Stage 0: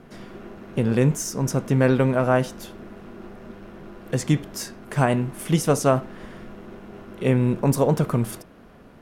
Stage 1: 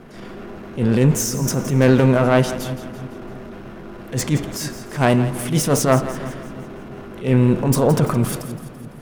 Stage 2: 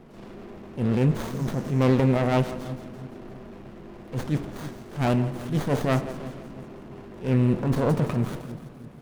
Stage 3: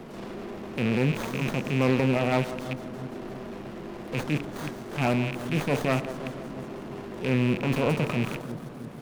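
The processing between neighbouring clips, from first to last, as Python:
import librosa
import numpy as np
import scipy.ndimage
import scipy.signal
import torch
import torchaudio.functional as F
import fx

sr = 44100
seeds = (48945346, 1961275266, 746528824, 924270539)

y1 = fx.self_delay(x, sr, depth_ms=0.1)
y1 = fx.transient(y1, sr, attack_db=-11, sustain_db=3)
y1 = fx.echo_split(y1, sr, split_hz=340.0, low_ms=316, high_ms=168, feedback_pct=52, wet_db=-13.0)
y1 = y1 * 10.0 ** (6.0 / 20.0)
y2 = fx.running_max(y1, sr, window=17)
y2 = y2 * 10.0 ** (-6.5 / 20.0)
y3 = fx.rattle_buzz(y2, sr, strikes_db=-30.0, level_db=-23.0)
y3 = fx.low_shelf(y3, sr, hz=120.0, db=-9.0)
y3 = fx.band_squash(y3, sr, depth_pct=40)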